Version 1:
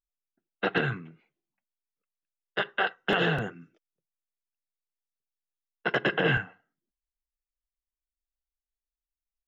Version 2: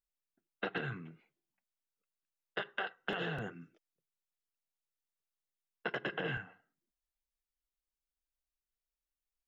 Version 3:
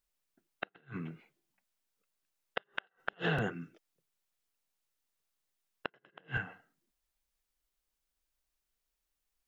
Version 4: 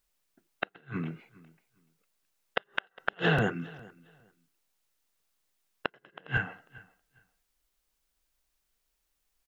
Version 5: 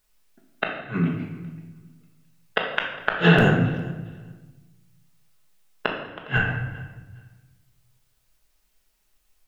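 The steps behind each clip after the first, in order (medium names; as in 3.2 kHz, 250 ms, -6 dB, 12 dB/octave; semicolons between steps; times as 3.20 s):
compression, threshold -32 dBFS, peak gain reduction 11.5 dB; trim -2.5 dB
inverted gate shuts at -27 dBFS, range -37 dB; trim +7.5 dB
feedback delay 408 ms, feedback 20%, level -22 dB; trim +6.5 dB
simulated room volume 520 m³, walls mixed, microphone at 1.4 m; trim +6 dB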